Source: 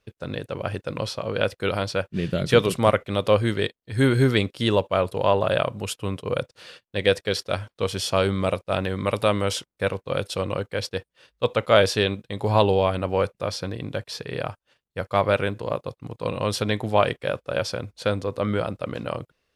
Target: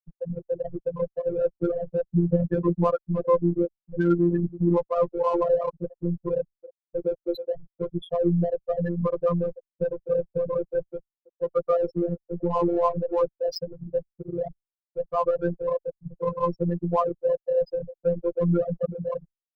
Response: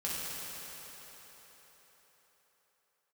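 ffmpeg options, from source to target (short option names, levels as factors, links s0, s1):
-filter_complex "[0:a]asettb=1/sr,asplit=3[s0][s1][s2];[s0]atrim=end=13.354[s3];[s1]atrim=start=13.35:end=13.96,asetpts=PTS-STARTPTS,afade=t=in:d=0.004:c=qsin,afade=t=out:st=0.606:d=0.004:c=qsin,bass=f=250:g=-2,treble=f=4000:g=8[s4];[s2]atrim=start=13.956[s5];[s3][s4]acrossfade=d=0.004:c1=hsin:c2=qsin[s6];[s6][s5]acrossfade=d=0.004:c1=qsin:c2=hsin,asplit=2[s7][s8];[s8]adelay=315,lowpass=f=4400:p=1,volume=0.168,asplit=2[s9][s10];[s10]adelay=315,lowpass=f=4400:p=1,volume=0.45,asplit=2[s11][s12];[s12]adelay=315,lowpass=f=4400:p=1,volume=0.45,asplit=2[s13][s14];[s14]adelay=315,lowpass=f=4400:p=1,volume=0.45[s15];[s7][s9][s11][s13][s15]amix=inputs=5:normalize=0,adynamicequalizer=threshold=0.00631:dfrequency=1000:dqfactor=6.8:tfrequency=1000:tqfactor=6.8:attack=5:release=100:ratio=0.375:range=3.5:mode=boostabove:tftype=bell,asplit=2[s16][s17];[s17]acompressor=threshold=0.0251:ratio=5,volume=1.33[s18];[s16][s18]amix=inputs=2:normalize=0,alimiter=limit=0.316:level=0:latency=1:release=18,acrusher=bits=5:mix=0:aa=0.000001,afftfilt=real='re*gte(hypot(re,im),0.316)':imag='im*gte(hypot(re,im),0.316)':win_size=1024:overlap=0.75,adynamicsmooth=sensitivity=5:basefreq=3000,afreqshift=-26,afftfilt=real='hypot(re,im)*cos(PI*b)':imag='0':win_size=1024:overlap=0.75,volume=1.58"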